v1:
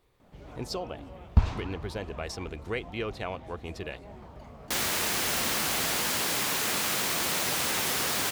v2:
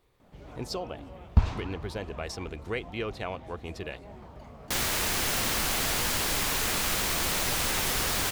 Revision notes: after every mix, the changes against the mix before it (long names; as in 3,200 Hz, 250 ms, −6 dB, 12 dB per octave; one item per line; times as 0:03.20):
second sound: remove high-pass filter 140 Hz 12 dB per octave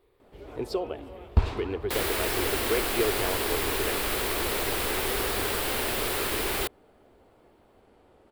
first sound: add high-shelf EQ 3,400 Hz +8.5 dB
second sound: entry −2.80 s
master: add graphic EQ with 15 bands 160 Hz −9 dB, 400 Hz +10 dB, 6,300 Hz −10 dB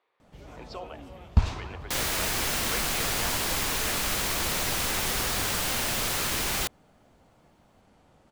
speech: add band-pass filter 670–2,700 Hz
master: add graphic EQ with 15 bands 160 Hz +9 dB, 400 Hz −10 dB, 6,300 Hz +10 dB